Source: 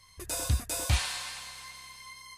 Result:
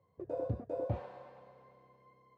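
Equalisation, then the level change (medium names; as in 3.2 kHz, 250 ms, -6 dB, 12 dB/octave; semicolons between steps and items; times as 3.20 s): high-pass 110 Hz 24 dB/octave; resonant low-pass 520 Hz, resonance Q 3.5; -2.5 dB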